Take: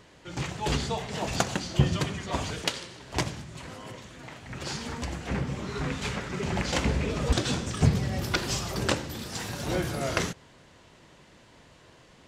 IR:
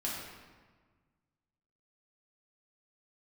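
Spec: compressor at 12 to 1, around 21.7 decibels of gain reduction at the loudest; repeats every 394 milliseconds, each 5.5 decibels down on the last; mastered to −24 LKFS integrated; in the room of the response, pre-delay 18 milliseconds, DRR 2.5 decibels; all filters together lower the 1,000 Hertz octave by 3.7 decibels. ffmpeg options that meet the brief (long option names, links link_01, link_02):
-filter_complex "[0:a]equalizer=frequency=1000:width_type=o:gain=-5,acompressor=threshold=-38dB:ratio=12,aecho=1:1:394|788|1182|1576|1970|2364|2758:0.531|0.281|0.149|0.079|0.0419|0.0222|0.0118,asplit=2[link_01][link_02];[1:a]atrim=start_sample=2205,adelay=18[link_03];[link_02][link_03]afir=irnorm=-1:irlink=0,volume=-6.5dB[link_04];[link_01][link_04]amix=inputs=2:normalize=0,volume=15.5dB"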